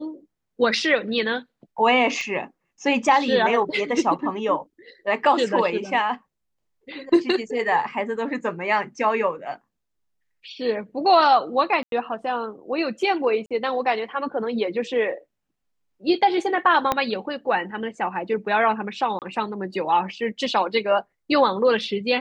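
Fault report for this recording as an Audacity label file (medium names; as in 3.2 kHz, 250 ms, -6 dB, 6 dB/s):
2.210000	2.210000	pop -19 dBFS
11.830000	11.920000	dropout 92 ms
13.460000	13.510000	dropout 46 ms
16.920000	16.920000	pop -7 dBFS
19.190000	19.220000	dropout 28 ms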